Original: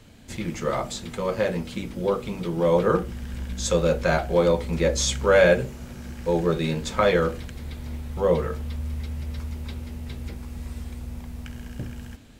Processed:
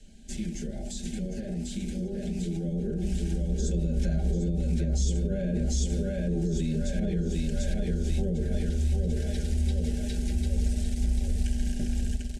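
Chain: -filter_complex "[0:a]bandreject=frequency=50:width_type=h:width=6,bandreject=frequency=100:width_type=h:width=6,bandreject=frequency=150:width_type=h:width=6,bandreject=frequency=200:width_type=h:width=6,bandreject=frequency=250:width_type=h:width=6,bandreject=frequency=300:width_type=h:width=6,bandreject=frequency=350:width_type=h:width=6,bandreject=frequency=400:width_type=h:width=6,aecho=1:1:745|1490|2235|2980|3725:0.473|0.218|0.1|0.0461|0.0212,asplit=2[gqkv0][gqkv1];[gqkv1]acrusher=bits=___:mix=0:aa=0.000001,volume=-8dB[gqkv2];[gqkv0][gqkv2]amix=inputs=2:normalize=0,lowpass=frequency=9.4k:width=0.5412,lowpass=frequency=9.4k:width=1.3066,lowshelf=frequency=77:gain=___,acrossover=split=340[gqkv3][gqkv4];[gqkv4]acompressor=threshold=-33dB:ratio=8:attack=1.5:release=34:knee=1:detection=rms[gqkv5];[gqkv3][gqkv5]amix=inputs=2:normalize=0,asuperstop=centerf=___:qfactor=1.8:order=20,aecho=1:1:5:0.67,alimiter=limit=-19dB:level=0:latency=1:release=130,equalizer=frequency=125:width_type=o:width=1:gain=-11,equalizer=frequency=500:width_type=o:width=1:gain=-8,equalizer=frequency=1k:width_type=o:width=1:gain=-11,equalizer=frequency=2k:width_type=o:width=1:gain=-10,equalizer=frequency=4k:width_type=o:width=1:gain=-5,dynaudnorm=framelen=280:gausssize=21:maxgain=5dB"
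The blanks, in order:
5, 5, 1100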